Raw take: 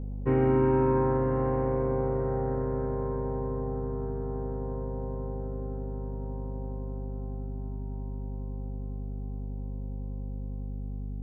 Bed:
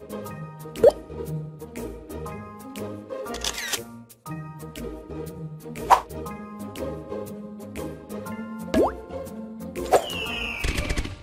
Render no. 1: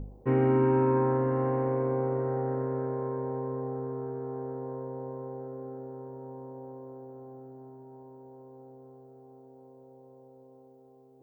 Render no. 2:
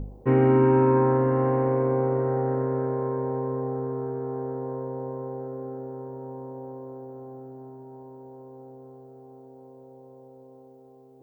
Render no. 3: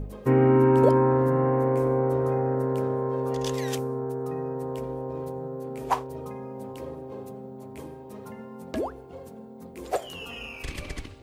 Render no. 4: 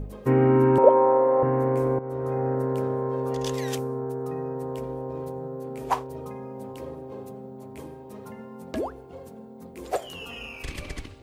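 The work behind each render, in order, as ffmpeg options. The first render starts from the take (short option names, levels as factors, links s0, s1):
-af "bandreject=f=50:t=h:w=4,bandreject=f=100:t=h:w=4,bandreject=f=150:t=h:w=4,bandreject=f=200:t=h:w=4,bandreject=f=250:t=h:w=4,bandreject=f=300:t=h:w=4,bandreject=f=350:t=h:w=4,bandreject=f=400:t=h:w=4,bandreject=f=450:t=h:w=4,bandreject=f=500:t=h:w=4,bandreject=f=550:t=h:w=4"
-af "volume=1.78"
-filter_complex "[1:a]volume=0.335[s0];[0:a][s0]amix=inputs=2:normalize=0"
-filter_complex "[0:a]asettb=1/sr,asplit=3[s0][s1][s2];[s0]atrim=end=0.784[s3];[s1]atrim=start=0.78:end=1.43,asetpts=PTS-STARTPTS,afade=t=in:d=0.004:c=qsin,afade=t=out:st=0.646:d=0.004:c=qsin,highpass=410,equalizer=f=550:t=q:w=4:g=10,equalizer=f=850:t=q:w=4:g=9,equalizer=f=1600:t=q:w=4:g=-7,lowpass=f=2500:w=0.5412,lowpass=f=2500:w=1.3066[s4];[s2]atrim=start=1.426[s5];[s3][s4]acrossfade=d=0.004:c1=hsin:c2=qsin[s6];[s6][s5]acrossfade=d=0.004:c1=qsin:c2=hsin,asplit=2[s7][s8];[s7]atrim=end=1.99,asetpts=PTS-STARTPTS,afade=t=out:st=1.986:d=0.004:c=hsin:silence=0.223872[s9];[s8]atrim=start=1.99,asetpts=PTS-STARTPTS,afade=t=in:d=0.47:silence=0.223872[s10];[s9][s10]concat=n=2:v=0:a=1"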